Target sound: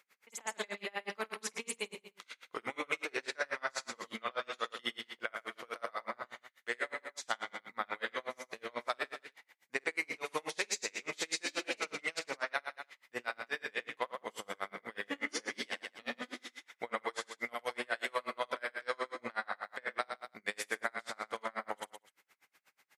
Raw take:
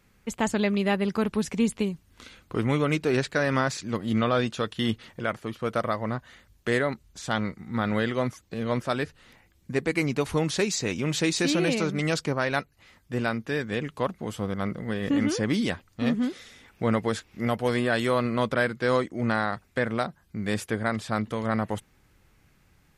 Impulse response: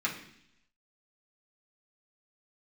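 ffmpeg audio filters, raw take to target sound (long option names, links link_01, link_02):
-filter_complex "[0:a]highpass=700,equalizer=frequency=2100:width=5.4:gain=5,asplit=2[link_01][link_02];[link_02]aecho=0:1:50|105|165.5|232|305.3:0.631|0.398|0.251|0.158|0.1[link_03];[link_01][link_03]amix=inputs=2:normalize=0,acompressor=threshold=-30dB:ratio=3,aeval=exprs='val(0)*pow(10,-34*(0.5-0.5*cos(2*PI*8.2*n/s))/20)':channel_layout=same,volume=1dB"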